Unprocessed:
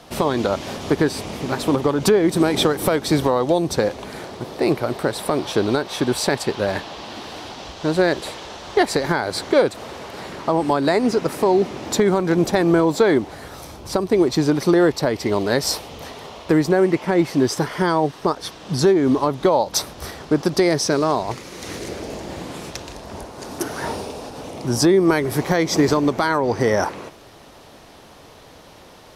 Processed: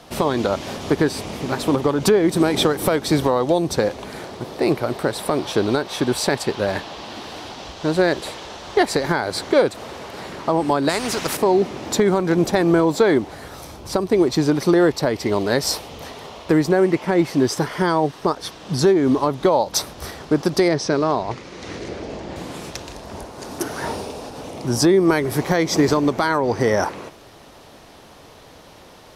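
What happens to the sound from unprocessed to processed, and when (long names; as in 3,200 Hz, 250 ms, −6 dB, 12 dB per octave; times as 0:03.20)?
0:10.89–0:11.37: every bin compressed towards the loudest bin 2 to 1
0:20.68–0:22.36: high-frequency loss of the air 99 metres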